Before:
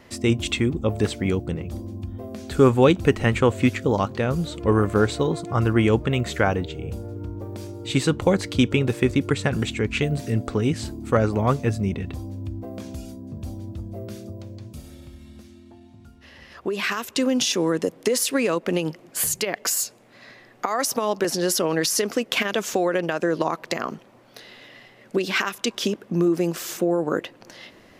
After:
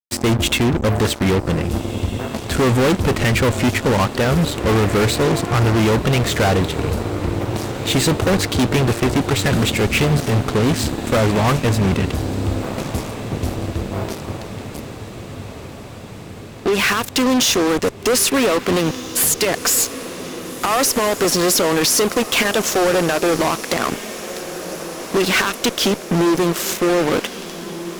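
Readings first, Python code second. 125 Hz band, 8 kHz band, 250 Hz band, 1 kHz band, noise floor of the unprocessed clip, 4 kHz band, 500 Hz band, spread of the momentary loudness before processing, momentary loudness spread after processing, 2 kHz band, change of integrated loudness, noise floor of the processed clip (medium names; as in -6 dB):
+6.0 dB, +8.5 dB, +4.5 dB, +7.0 dB, -51 dBFS, +8.5 dB, +4.5 dB, 15 LU, 13 LU, +7.0 dB, +5.5 dB, -34 dBFS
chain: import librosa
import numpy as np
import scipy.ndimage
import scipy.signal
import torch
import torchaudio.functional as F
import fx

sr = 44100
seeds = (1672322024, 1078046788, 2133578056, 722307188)

y = fx.fuzz(x, sr, gain_db=30.0, gate_db=-34.0)
y = fx.wow_flutter(y, sr, seeds[0], rate_hz=2.1, depth_cents=29.0)
y = fx.echo_diffused(y, sr, ms=1637, feedback_pct=65, wet_db=-13.5)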